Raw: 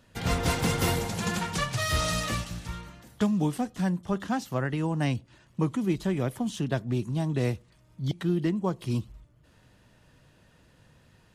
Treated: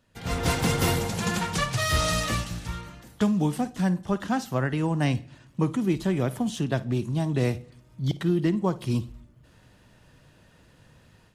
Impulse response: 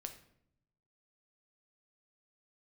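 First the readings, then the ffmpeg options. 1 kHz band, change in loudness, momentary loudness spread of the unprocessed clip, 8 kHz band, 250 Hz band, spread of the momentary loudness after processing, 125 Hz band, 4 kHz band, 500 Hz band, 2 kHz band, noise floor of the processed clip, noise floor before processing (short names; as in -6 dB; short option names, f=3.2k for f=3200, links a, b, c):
+2.5 dB, +2.5 dB, 9 LU, +2.5 dB, +2.5 dB, 9 LU, +2.5 dB, +2.5 dB, +2.5 dB, +2.5 dB, -57 dBFS, -61 dBFS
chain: -filter_complex "[0:a]dynaudnorm=f=230:g=3:m=10.5dB,asplit=2[a][b];[1:a]atrim=start_sample=2205,adelay=54[c];[b][c]afir=irnorm=-1:irlink=0,volume=-12.5dB[d];[a][d]amix=inputs=2:normalize=0,volume=-7.5dB"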